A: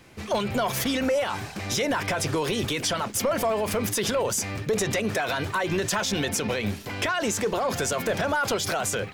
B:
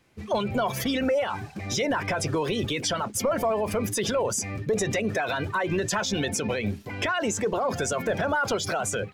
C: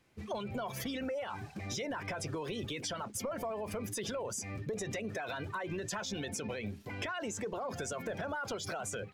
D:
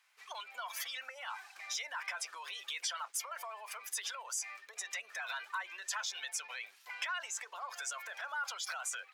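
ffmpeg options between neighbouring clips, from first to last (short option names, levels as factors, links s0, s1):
-af "afftdn=nr=12:nf=-32"
-af "acompressor=threshold=0.0282:ratio=3,volume=0.501"
-af "highpass=f=1000:w=0.5412,highpass=f=1000:w=1.3066,volume=1.33"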